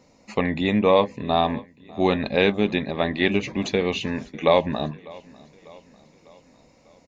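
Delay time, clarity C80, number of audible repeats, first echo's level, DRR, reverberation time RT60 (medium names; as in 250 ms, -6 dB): 598 ms, no reverb, 3, -23.0 dB, no reverb, no reverb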